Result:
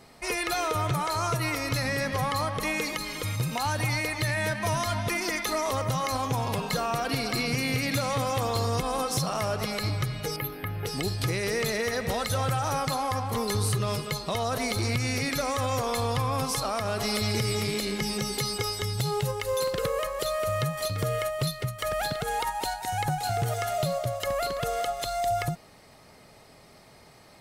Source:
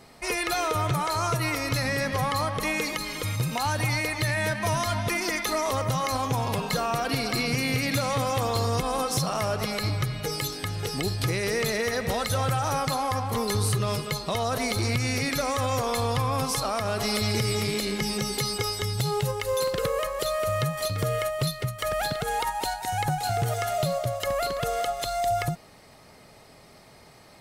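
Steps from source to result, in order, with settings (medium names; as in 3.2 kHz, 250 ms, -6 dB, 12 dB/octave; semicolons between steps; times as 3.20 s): 10.36–10.86 s: FFT filter 2.3 kHz 0 dB, 7.7 kHz -29 dB, 12 kHz +4 dB; trim -1.5 dB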